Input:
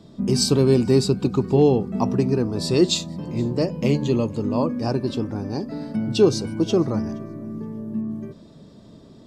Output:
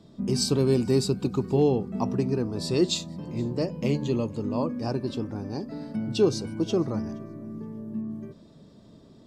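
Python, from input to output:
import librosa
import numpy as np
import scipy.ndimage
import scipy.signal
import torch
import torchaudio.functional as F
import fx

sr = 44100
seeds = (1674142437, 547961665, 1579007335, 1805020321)

y = fx.high_shelf(x, sr, hz=8900.0, db=7.0, at=(0.6, 1.64))
y = F.gain(torch.from_numpy(y), -5.5).numpy()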